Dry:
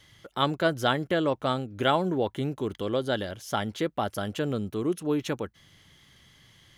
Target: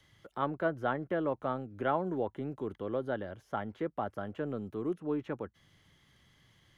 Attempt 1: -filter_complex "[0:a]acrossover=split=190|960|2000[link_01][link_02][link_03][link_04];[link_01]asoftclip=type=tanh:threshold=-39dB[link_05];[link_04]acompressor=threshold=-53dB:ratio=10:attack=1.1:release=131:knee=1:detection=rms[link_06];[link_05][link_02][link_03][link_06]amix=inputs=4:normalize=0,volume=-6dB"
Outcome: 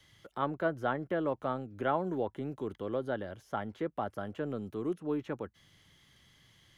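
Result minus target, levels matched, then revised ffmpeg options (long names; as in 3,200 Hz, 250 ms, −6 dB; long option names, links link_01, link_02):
downward compressor: peak gain reduction −6.5 dB
-filter_complex "[0:a]acrossover=split=190|960|2000[link_01][link_02][link_03][link_04];[link_01]asoftclip=type=tanh:threshold=-39dB[link_05];[link_04]acompressor=threshold=-60dB:ratio=10:attack=1.1:release=131:knee=1:detection=rms[link_06];[link_05][link_02][link_03][link_06]amix=inputs=4:normalize=0,volume=-6dB"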